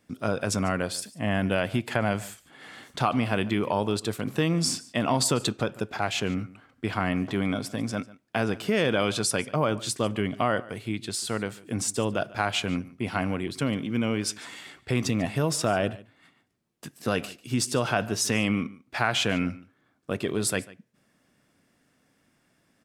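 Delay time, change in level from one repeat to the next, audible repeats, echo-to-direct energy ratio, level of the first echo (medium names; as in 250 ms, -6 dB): 145 ms, no regular repeats, 1, -20.5 dB, -20.5 dB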